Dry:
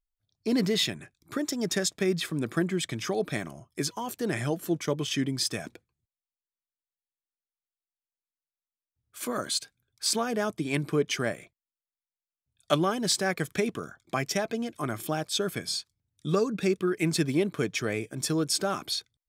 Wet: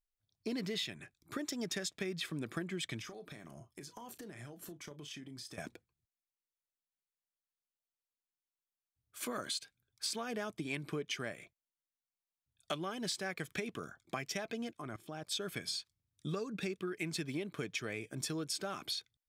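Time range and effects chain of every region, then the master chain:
3.01–5.58 compressor 20:1, threshold -39 dBFS + doubler 34 ms -12 dB
14.71–15.27 high shelf 9700 Hz -11.5 dB + level quantiser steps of 19 dB
whole clip: dynamic EQ 2700 Hz, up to +6 dB, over -45 dBFS, Q 0.85; compressor, threshold -30 dBFS; gain -5.5 dB

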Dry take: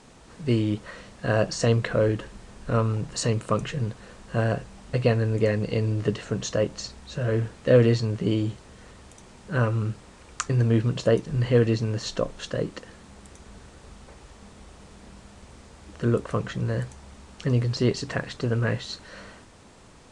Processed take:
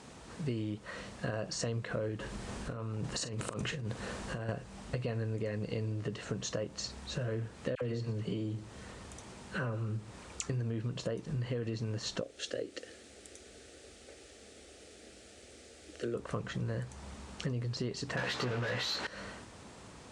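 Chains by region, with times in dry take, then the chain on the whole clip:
2.2–4.49 negative-ratio compressor -33 dBFS + doubler 42 ms -12.5 dB
7.75–10.42 dispersion lows, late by 66 ms, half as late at 1200 Hz + echo 0.119 s -18 dB
12.21–16.15 HPF 220 Hz 6 dB/oct + fixed phaser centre 410 Hz, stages 4
18.17–19.07 overdrive pedal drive 28 dB, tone 4900 Hz, clips at -14.5 dBFS + air absorption 52 m + doubler 16 ms -4 dB
whole clip: limiter -15.5 dBFS; compressor 5:1, threshold -34 dBFS; HPF 53 Hz

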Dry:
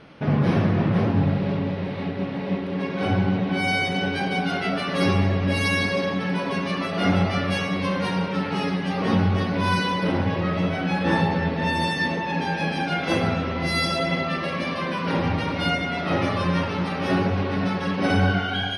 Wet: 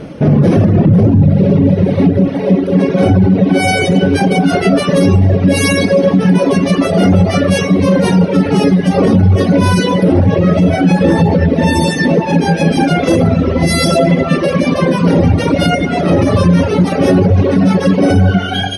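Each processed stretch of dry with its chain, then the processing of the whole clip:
0.85–2.28 HPF 50 Hz + low shelf 240 Hz +8.5 dB
whole clip: reverb removal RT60 1.7 s; band shelf 2000 Hz -11.5 dB 2.9 oct; maximiser +22.5 dB; gain -1 dB

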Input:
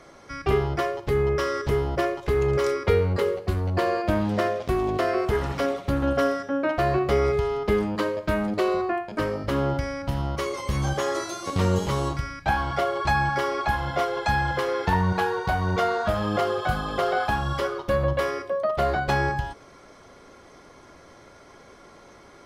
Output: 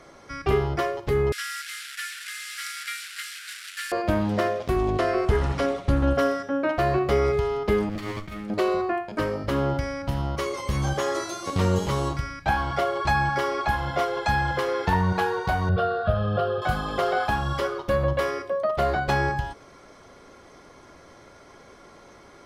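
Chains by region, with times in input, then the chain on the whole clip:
1.32–3.92 delta modulation 64 kbps, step -26.5 dBFS + steep high-pass 1400 Hz 72 dB/oct + notch 6400 Hz, Q 15
4.76–6.15 LPF 11000 Hz 24 dB/oct + low shelf 76 Hz +11 dB
7.89–8.5 minimum comb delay 0.9 ms + bell 940 Hz -14.5 dB 0.43 oct + negative-ratio compressor -33 dBFS
15.69–16.62 LPF 2300 Hz 6 dB/oct + bell 130 Hz +8.5 dB 2.2 oct + fixed phaser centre 1400 Hz, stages 8
whole clip: dry

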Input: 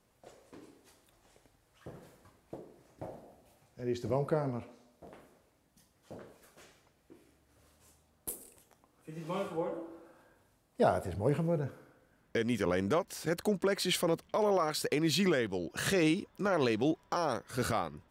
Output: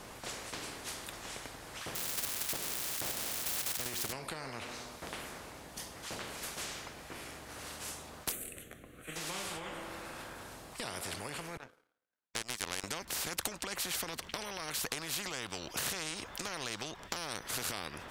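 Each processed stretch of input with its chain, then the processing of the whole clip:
1.95–4.13 switching spikes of -35.5 dBFS + level quantiser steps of 9 dB
8.32–9.16 fixed phaser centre 2200 Hz, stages 4 + upward expander, over -57 dBFS
11.57–12.84 HPF 960 Hz 6 dB/oct + power-law curve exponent 2
whole clip: compressor, threshold -38 dBFS; high shelf 12000 Hz -10 dB; spectral compressor 4:1; gain +11.5 dB

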